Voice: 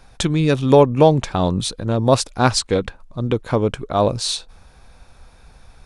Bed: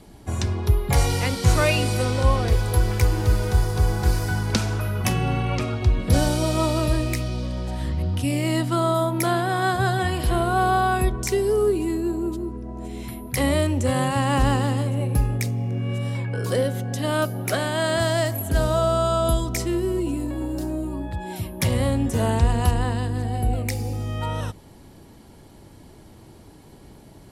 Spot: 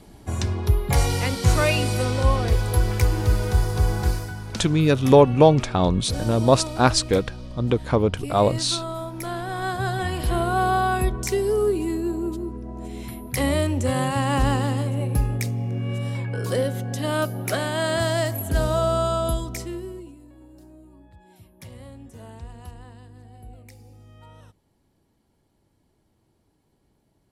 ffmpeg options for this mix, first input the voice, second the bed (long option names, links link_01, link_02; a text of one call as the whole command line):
ffmpeg -i stem1.wav -i stem2.wav -filter_complex "[0:a]adelay=4400,volume=-1.5dB[link_01];[1:a]volume=8.5dB,afade=type=out:start_time=4:duration=0.33:silence=0.334965,afade=type=in:start_time=9.16:duration=1.25:silence=0.354813,afade=type=out:start_time=18.99:duration=1.16:silence=0.105925[link_02];[link_01][link_02]amix=inputs=2:normalize=0" out.wav